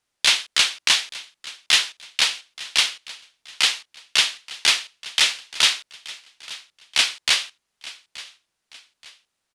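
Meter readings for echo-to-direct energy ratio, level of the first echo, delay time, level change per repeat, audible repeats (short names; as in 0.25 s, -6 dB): -18.0 dB, -18.5 dB, 0.877 s, -8.0 dB, 3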